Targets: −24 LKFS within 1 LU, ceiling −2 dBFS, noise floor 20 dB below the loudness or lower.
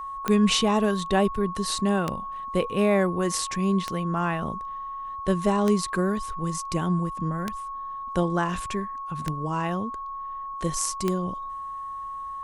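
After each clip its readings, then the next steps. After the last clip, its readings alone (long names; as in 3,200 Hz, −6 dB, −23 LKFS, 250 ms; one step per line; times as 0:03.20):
number of clicks 7; interfering tone 1,100 Hz; level of the tone −32 dBFS; integrated loudness −26.5 LKFS; sample peak −8.0 dBFS; target loudness −24.0 LKFS
→ click removal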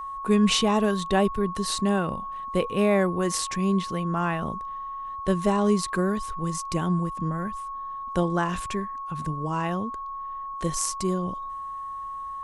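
number of clicks 0; interfering tone 1,100 Hz; level of the tone −32 dBFS
→ notch filter 1,100 Hz, Q 30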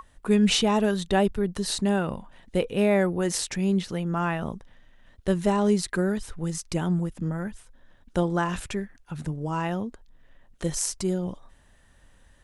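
interfering tone none found; integrated loudness −26.5 LKFS; sample peak −9.0 dBFS; target loudness −24.0 LKFS
→ level +2.5 dB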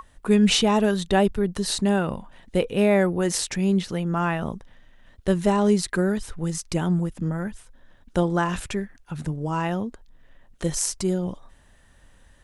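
integrated loudness −24.0 LKFS; sample peak −6.5 dBFS; background noise floor −55 dBFS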